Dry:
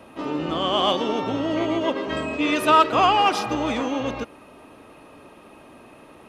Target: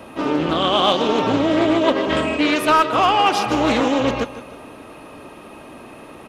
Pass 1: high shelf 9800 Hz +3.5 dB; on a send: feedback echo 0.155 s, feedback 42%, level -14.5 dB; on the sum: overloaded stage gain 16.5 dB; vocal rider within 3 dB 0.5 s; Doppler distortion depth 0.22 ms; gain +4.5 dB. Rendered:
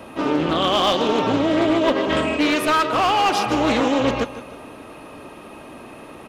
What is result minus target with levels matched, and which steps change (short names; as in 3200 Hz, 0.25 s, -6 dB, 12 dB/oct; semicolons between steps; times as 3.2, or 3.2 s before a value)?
overloaded stage: distortion +9 dB
change: overloaded stage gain 10 dB